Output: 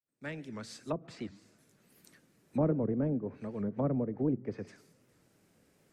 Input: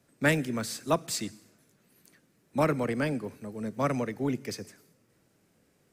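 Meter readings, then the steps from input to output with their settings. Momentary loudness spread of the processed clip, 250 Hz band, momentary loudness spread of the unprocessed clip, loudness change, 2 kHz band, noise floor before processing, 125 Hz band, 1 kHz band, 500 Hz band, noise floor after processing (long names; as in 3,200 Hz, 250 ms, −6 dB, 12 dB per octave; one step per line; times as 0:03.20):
14 LU, −2.0 dB, 13 LU, −4.5 dB, −17.0 dB, −69 dBFS, −2.0 dB, −11.5 dB, −5.0 dB, −69 dBFS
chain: fade in at the beginning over 1.93 s
treble cut that deepens with the level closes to 490 Hz, closed at −28.5 dBFS
wow of a warped record 78 rpm, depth 160 cents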